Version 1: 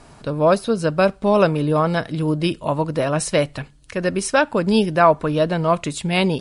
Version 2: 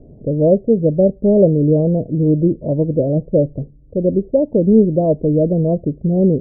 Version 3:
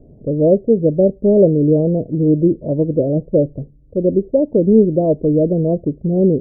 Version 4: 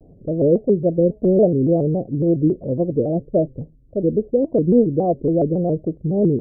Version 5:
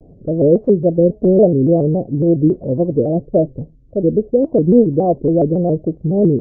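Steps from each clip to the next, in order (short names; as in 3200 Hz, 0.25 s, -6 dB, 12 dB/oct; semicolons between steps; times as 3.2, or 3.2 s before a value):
steep low-pass 570 Hz 48 dB/oct; gain +6.5 dB
dynamic EQ 360 Hz, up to +5 dB, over -24 dBFS, Q 1.3; gain -2.5 dB
shaped vibrato square 3.6 Hz, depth 160 cents; gain -3.5 dB
gain +4 dB; AAC 32 kbps 16000 Hz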